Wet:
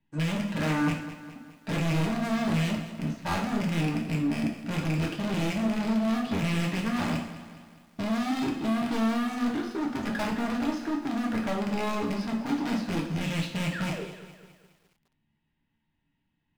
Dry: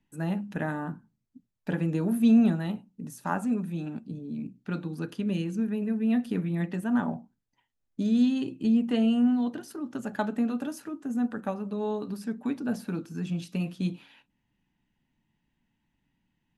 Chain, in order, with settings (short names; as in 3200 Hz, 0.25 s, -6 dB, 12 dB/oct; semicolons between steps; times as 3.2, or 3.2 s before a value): rattling part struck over -34 dBFS, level -27 dBFS; LPF 4600 Hz 24 dB/oct; sample leveller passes 2; painted sound fall, 13.72–14.05, 340–2000 Hz -39 dBFS; overloaded stage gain 29 dB; reverb, pre-delay 3 ms, DRR -0.5 dB; lo-fi delay 0.207 s, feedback 55%, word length 9-bit, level -13 dB